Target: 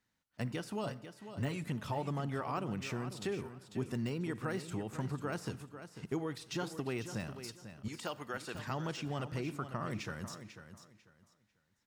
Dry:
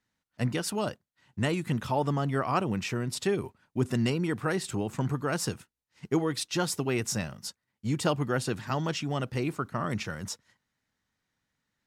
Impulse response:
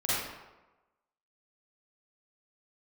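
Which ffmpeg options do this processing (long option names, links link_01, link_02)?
-filter_complex "[0:a]deesser=0.9,asettb=1/sr,asplit=3[link_01][link_02][link_03];[link_01]atrim=end=0.834[link_04];[link_02]atrim=start=0.83:end=1.64,asetpts=PTS-STARTPTS,afade=type=in:duration=0.004:curve=qsin,afade=type=out:start_time=0.806:duration=0.004:curve=qsin,aecho=1:1:7.3:0.74,atrim=end_sample=35721[link_05];[link_03]atrim=start=1.636[link_06];[link_04][link_05]acrossfade=duration=0.004:curve1=hsin:curve2=qsin[link_07];[link_07][link_06]acrossfade=duration=0.004:curve1=qsin:curve2=hsin,asettb=1/sr,asplit=3[link_08][link_09][link_10];[link_08]atrim=end=7.884[link_11];[link_09]atrim=start=7.88:end=8.55,asetpts=PTS-STARTPTS,afade=type=in:duration=0.004:curve=qsin,afade=type=out:start_time=0.666:duration=0.004:curve=qsin,highpass=frequency=1000:poles=1[link_12];[link_10]atrim=start=8.546[link_13];[link_11][link_12]acrossfade=duration=0.004:curve1=hsin:curve2=qsin[link_14];[link_14][link_13]acrossfade=duration=0.004:curve1=qsin:curve2=hsin,acompressor=threshold=-38dB:ratio=2,aecho=1:1:495|990|1485:0.282|0.0648|0.0149,asplit=2[link_15][link_16];[1:a]atrim=start_sample=2205,highshelf=frequency=9700:gain=6.5[link_17];[link_16][link_17]afir=irnorm=-1:irlink=0,volume=-27.5dB[link_18];[link_15][link_18]amix=inputs=2:normalize=0,volume=-2dB"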